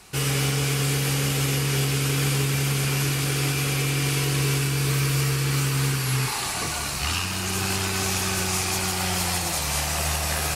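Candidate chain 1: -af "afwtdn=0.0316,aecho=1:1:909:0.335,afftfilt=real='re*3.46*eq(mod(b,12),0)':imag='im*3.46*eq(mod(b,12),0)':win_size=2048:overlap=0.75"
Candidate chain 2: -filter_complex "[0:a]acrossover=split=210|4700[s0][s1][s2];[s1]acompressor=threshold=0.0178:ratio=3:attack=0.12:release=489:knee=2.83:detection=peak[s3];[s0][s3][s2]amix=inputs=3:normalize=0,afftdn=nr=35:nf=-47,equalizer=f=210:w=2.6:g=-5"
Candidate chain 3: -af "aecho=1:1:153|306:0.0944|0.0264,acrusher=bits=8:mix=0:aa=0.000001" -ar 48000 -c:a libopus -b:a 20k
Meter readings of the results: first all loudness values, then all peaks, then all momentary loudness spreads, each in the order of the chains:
-32.0 LUFS, -26.0 LUFS, -23.0 LUFS; -20.0 dBFS, -14.5 dBFS, -11.5 dBFS; 4 LU, 3 LU, 3 LU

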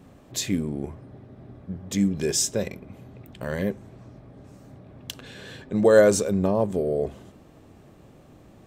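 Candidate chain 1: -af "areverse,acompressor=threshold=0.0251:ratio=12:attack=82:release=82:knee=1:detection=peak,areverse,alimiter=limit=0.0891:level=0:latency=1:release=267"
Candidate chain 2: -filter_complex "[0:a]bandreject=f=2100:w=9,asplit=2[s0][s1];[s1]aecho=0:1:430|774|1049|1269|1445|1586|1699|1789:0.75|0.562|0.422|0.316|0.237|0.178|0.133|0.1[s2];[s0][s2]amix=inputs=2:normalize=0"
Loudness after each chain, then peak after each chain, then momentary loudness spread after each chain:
-34.0 LUFS, -22.5 LUFS; -21.0 dBFS, -5.0 dBFS; 21 LU, 17 LU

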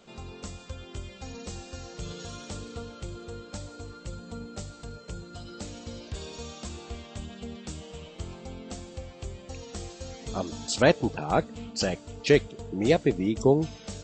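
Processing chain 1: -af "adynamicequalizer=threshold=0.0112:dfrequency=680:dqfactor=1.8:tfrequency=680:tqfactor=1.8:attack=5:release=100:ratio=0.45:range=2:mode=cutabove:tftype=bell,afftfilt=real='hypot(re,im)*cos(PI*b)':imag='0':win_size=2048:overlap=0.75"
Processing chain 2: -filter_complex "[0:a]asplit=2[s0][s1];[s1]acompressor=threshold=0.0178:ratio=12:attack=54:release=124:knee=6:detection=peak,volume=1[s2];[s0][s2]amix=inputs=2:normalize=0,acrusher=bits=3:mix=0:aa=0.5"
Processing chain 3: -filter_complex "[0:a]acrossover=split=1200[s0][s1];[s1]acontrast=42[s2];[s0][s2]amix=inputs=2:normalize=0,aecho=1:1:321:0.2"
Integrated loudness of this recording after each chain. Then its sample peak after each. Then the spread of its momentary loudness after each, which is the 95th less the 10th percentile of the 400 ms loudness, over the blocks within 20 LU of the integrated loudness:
-34.5 LUFS, -25.0 LUFS, -29.5 LUFS; -4.0 dBFS, -4.5 dBFS, -6.0 dBFS; 18 LU, 21 LU, 18 LU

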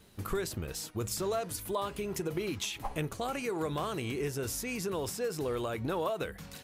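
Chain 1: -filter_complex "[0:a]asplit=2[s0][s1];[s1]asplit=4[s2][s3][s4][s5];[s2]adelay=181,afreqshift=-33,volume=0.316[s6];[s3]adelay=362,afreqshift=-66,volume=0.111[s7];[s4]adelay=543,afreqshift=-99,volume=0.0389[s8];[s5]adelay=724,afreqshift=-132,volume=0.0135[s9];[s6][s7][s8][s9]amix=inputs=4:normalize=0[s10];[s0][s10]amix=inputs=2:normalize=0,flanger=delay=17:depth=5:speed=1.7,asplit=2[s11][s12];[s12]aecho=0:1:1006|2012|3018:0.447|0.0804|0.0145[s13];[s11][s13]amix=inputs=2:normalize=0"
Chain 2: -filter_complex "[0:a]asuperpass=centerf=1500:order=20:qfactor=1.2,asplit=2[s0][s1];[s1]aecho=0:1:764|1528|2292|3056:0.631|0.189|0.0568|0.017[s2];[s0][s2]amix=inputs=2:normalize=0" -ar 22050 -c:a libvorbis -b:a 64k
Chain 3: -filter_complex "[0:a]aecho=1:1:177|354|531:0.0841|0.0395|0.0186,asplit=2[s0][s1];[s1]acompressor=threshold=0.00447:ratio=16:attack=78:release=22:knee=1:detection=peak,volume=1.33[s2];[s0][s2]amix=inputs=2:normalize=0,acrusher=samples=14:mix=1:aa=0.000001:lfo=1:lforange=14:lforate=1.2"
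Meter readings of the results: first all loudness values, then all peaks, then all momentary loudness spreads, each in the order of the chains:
-36.5 LUFS, -44.0 LUFS, -31.0 LUFS; -21.5 dBFS, -27.0 dBFS, -17.5 dBFS; 3 LU, 6 LU, 3 LU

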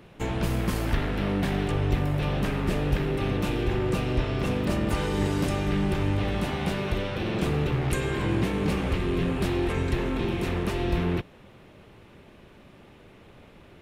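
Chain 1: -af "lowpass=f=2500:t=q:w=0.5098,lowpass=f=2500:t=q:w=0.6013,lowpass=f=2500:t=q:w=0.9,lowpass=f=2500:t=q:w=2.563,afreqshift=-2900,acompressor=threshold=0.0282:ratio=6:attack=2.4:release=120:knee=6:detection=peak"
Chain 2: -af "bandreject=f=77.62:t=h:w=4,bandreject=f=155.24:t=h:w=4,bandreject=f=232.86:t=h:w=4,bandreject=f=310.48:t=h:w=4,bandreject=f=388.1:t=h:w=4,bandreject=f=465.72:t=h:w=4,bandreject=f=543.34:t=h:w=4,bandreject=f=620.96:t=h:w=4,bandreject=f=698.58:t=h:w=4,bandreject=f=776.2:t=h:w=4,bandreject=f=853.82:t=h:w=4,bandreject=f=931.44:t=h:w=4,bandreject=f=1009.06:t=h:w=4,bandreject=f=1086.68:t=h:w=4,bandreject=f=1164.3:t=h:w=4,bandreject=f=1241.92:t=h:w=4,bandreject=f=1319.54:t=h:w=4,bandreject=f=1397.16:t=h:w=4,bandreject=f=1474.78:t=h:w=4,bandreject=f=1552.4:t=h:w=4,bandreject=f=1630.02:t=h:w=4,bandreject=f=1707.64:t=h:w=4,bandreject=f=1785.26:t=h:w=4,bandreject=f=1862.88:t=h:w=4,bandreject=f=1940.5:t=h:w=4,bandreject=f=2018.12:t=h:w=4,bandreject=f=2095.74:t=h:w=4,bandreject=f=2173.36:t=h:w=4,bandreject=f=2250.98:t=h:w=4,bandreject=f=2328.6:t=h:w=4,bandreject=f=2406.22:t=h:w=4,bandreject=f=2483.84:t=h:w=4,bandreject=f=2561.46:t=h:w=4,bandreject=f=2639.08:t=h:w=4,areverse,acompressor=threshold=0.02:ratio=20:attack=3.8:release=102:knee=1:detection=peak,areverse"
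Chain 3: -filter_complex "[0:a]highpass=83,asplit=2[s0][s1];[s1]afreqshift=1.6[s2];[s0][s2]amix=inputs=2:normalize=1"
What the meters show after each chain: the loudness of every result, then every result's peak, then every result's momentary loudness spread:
-31.5 LUFS, -39.0 LUFS, -31.0 LUFS; -23.5 dBFS, -26.5 dBFS, -16.0 dBFS; 17 LU, 13 LU, 3 LU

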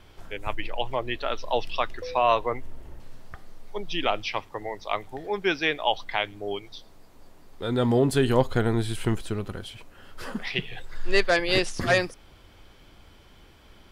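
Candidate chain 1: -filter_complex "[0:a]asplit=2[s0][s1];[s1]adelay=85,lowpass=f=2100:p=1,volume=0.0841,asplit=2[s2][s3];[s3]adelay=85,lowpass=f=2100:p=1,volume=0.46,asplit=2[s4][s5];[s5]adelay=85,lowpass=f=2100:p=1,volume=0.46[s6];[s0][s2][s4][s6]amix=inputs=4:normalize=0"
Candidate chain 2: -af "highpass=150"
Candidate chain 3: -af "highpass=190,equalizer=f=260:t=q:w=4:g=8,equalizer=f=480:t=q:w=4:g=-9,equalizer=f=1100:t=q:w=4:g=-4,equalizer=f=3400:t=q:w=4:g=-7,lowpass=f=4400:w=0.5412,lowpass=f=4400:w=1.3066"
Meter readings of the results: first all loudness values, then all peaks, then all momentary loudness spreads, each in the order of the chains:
-27.0 LUFS, -27.0 LUFS, -28.0 LUFS; -6.5 dBFS, -7.0 dBFS, -8.5 dBFS; 16 LU, 16 LU, 16 LU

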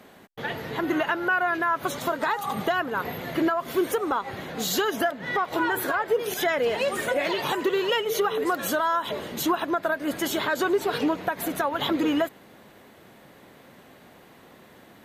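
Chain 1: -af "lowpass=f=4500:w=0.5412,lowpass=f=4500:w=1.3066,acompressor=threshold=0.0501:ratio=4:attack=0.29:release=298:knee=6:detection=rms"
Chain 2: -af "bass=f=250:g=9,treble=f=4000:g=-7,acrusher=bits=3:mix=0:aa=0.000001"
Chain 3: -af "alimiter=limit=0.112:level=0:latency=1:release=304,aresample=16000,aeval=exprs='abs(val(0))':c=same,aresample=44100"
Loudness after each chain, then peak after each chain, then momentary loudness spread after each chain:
-32.5 LUFS, -23.5 LUFS, -34.0 LUFS; -22.0 dBFS, -11.0 dBFS, -18.0 dBFS; 20 LU, 6 LU, 4 LU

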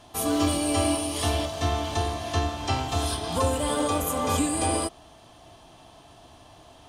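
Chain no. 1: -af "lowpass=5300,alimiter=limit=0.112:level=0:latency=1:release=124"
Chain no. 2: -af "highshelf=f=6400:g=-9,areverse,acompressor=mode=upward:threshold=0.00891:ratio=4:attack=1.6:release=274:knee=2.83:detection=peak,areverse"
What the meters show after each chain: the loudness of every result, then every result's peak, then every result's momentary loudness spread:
-29.5 LUFS, -27.0 LUFS; -19.0 dBFS, -11.0 dBFS; 2 LU, 4 LU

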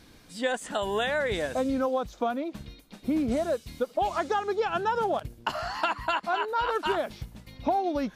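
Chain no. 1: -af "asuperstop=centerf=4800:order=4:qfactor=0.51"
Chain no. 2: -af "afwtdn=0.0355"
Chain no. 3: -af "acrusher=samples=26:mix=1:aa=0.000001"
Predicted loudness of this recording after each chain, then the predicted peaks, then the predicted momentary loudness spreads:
-29.5 LUFS, -29.5 LUFS, -28.5 LUFS; -15.0 dBFS, -15.0 dBFS, -15.0 dBFS; 8 LU, 8 LU, 9 LU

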